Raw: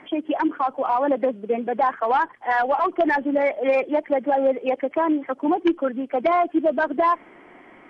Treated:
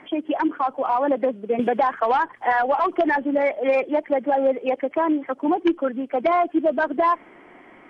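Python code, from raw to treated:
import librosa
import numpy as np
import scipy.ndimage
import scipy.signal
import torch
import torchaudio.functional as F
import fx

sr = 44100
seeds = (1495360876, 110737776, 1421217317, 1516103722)

y = fx.band_squash(x, sr, depth_pct=100, at=(1.59, 3.16))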